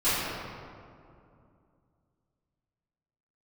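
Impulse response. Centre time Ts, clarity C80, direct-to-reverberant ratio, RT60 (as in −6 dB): 153 ms, −1.0 dB, −17.0 dB, 2.5 s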